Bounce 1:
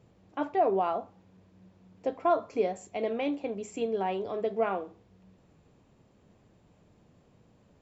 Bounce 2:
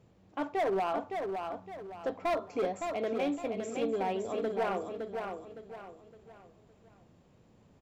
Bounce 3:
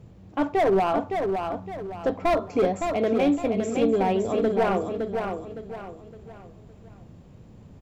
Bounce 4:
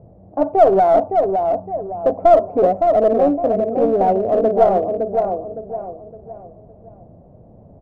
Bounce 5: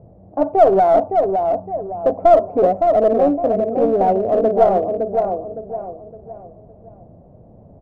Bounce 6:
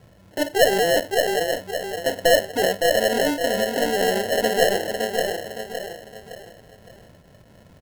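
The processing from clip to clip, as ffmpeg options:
ffmpeg -i in.wav -af "volume=25dB,asoftclip=hard,volume=-25dB,aecho=1:1:563|1126|1689|2252:0.531|0.191|0.0688|0.0248,volume=-1.5dB" out.wav
ffmpeg -i in.wav -af "lowshelf=frequency=220:gain=12,volume=7dB" out.wav
ffmpeg -i in.wav -filter_complex "[0:a]lowpass=frequency=660:width_type=q:width=4.9,asplit=2[link_01][link_02];[link_02]aeval=exprs='clip(val(0),-1,0.15)':channel_layout=same,volume=-7dB[link_03];[link_01][link_03]amix=inputs=2:normalize=0,volume=-2dB" out.wav
ffmpeg -i in.wav -af anull out.wav
ffmpeg -i in.wav -filter_complex "[0:a]asplit=2[link_01][link_02];[link_02]aecho=0:1:586:0.355[link_03];[link_01][link_03]amix=inputs=2:normalize=0,acrusher=samples=37:mix=1:aa=0.000001,volume=-6dB" out.wav

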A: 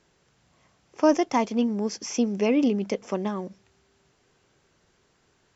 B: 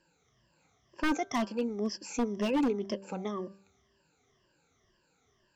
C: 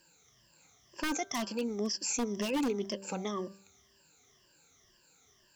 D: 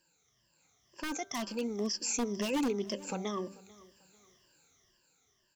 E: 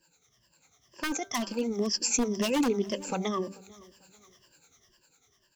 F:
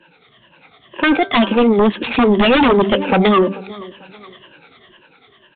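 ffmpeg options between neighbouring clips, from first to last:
ffmpeg -i in.wav -af "afftfilt=real='re*pow(10,18/40*sin(2*PI*(1.3*log(max(b,1)*sr/1024/100)/log(2)-(-2)*(pts-256)/sr)))':imag='im*pow(10,18/40*sin(2*PI*(1.3*log(max(b,1)*sr/1024/100)/log(2)-(-2)*(pts-256)/sr)))':win_size=1024:overlap=0.75,aeval=exprs='0.224*(abs(mod(val(0)/0.224+3,4)-2)-1)':channel_layout=same,bandreject=frequency=195.4:width_type=h:width=4,bandreject=frequency=390.8:width_type=h:width=4,bandreject=frequency=586.2:width_type=h:width=4,bandreject=frequency=781.6:width_type=h:width=4,bandreject=frequency=977:width_type=h:width=4,bandreject=frequency=1172.4:width_type=h:width=4,bandreject=frequency=1367.8:width_type=h:width=4,bandreject=frequency=1563.2:width_type=h:width=4,volume=-9dB" out.wav
ffmpeg -i in.wav -af "crystalizer=i=4:c=0,alimiter=limit=-23.5dB:level=0:latency=1:release=101" out.wav
ffmpeg -i in.wav -af "dynaudnorm=framelen=270:gausssize=9:maxgain=8dB,aecho=1:1:442|884:0.0794|0.0254,volume=-8dB" out.wav
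ffmpeg -i in.wav -filter_complex "[0:a]acrossover=split=460[link_01][link_02];[link_01]aeval=exprs='val(0)*(1-0.7/2+0.7/2*cos(2*PI*10*n/s))':channel_layout=same[link_03];[link_02]aeval=exprs='val(0)*(1-0.7/2-0.7/2*cos(2*PI*10*n/s))':channel_layout=same[link_04];[link_03][link_04]amix=inputs=2:normalize=0,volume=8.5dB" out.wav
ffmpeg -i in.wav -filter_complex "[0:a]acrossover=split=150[link_01][link_02];[link_02]aeval=exprs='0.178*sin(PI/2*3.55*val(0)/0.178)':channel_layout=same[link_03];[link_01][link_03]amix=inputs=2:normalize=0,aresample=8000,aresample=44100,volume=7dB" -ar 22050 -c:a libvorbis -b:a 64k out.ogg

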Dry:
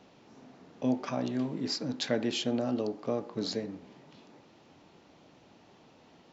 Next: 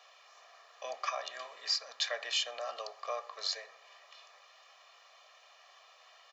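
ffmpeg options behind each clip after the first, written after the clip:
ffmpeg -i in.wav -filter_complex "[0:a]highpass=frequency=850:width=0.5412,highpass=frequency=850:width=1.3066,aecho=1:1:1.7:0.95,asplit=2[link_01][link_02];[link_02]alimiter=level_in=2dB:limit=-24dB:level=0:latency=1:release=404,volume=-2dB,volume=3dB[link_03];[link_01][link_03]amix=inputs=2:normalize=0,volume=-5dB" out.wav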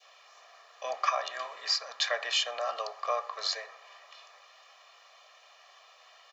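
ffmpeg -i in.wav -af "adynamicequalizer=threshold=0.00282:dfrequency=1100:dqfactor=0.71:tfrequency=1100:tqfactor=0.71:attack=5:release=100:ratio=0.375:range=3:mode=boostabove:tftype=bell,volume=2.5dB" out.wav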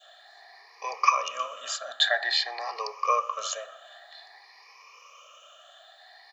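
ffmpeg -i in.wav -af "afftfilt=real='re*pow(10,20/40*sin(2*PI*(0.83*log(max(b,1)*sr/1024/100)/log(2)-(0.52)*(pts-256)/sr)))':imag='im*pow(10,20/40*sin(2*PI*(0.83*log(max(b,1)*sr/1024/100)/log(2)-(0.52)*(pts-256)/sr)))':win_size=1024:overlap=0.75" out.wav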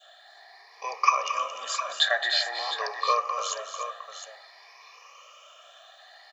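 ffmpeg -i in.wav -af "aecho=1:1:223|297|709:0.282|0.251|0.299" out.wav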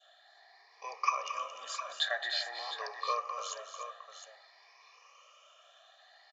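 ffmpeg -i in.wav -af "aresample=16000,aresample=44100,volume=-9dB" out.wav

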